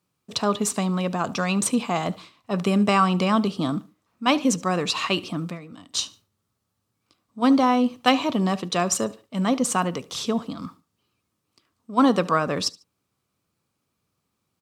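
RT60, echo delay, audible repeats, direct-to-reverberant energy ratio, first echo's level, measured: no reverb, 73 ms, 2, no reverb, -22.0 dB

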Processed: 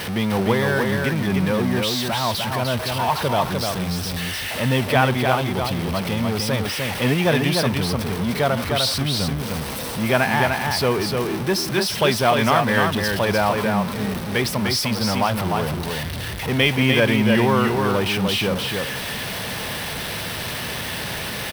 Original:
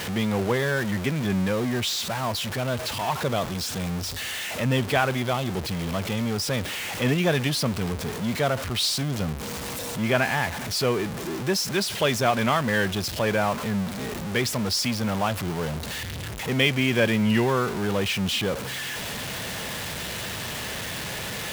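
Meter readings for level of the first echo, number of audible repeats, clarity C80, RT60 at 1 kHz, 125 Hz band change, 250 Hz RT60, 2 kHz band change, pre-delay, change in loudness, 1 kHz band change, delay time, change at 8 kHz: -4.0 dB, 1, no reverb, no reverb, +4.5 dB, no reverb, +4.5 dB, no reverb, +4.5 dB, +6.5 dB, 300 ms, +1.5 dB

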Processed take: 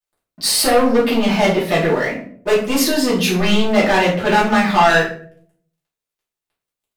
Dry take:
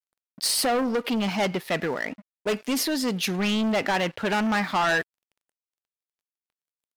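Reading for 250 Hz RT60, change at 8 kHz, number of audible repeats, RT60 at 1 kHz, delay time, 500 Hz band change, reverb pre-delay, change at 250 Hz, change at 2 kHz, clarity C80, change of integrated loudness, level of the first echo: 0.70 s, +8.0 dB, no echo, 0.45 s, no echo, +11.5 dB, 3 ms, +8.5 dB, +8.5 dB, 10.0 dB, +9.5 dB, no echo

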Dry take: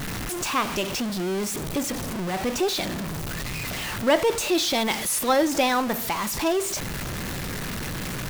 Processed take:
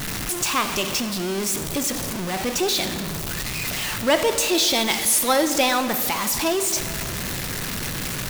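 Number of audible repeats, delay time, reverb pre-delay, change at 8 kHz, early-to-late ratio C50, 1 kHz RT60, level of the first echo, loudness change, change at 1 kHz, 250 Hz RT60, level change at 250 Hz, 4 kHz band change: no echo, no echo, 37 ms, +6.5 dB, 10.5 dB, 2.5 s, no echo, +3.5 dB, +1.5 dB, 2.5 s, +0.5 dB, +5.0 dB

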